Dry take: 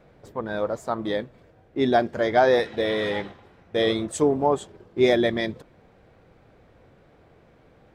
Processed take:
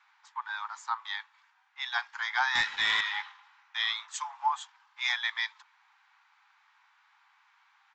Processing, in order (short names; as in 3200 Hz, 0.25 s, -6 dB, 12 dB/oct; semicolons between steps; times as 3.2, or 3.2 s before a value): steep high-pass 850 Hz 96 dB/oct; 2.55–3.01 sample leveller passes 2; downsampling 16000 Hz